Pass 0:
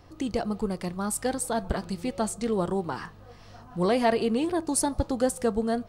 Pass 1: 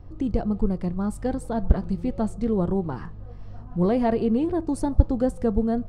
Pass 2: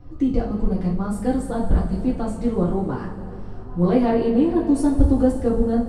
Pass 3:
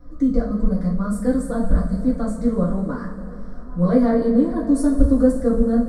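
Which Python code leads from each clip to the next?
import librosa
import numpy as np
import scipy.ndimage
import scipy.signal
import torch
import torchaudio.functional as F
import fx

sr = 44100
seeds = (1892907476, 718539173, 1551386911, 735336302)

y1 = fx.tilt_eq(x, sr, slope=-4.0)
y1 = y1 * librosa.db_to_amplitude(-3.5)
y2 = fx.rev_double_slope(y1, sr, seeds[0], early_s=0.31, late_s=3.1, knee_db=-17, drr_db=-6.0)
y2 = y2 * librosa.db_to_amplitude(-3.0)
y3 = fx.fixed_phaser(y2, sr, hz=550.0, stages=8)
y3 = y3 * librosa.db_to_amplitude(3.0)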